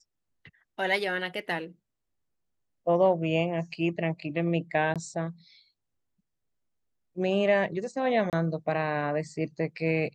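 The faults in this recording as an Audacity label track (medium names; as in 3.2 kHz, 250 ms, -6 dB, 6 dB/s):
4.940000	4.960000	dropout 17 ms
8.300000	8.330000	dropout 28 ms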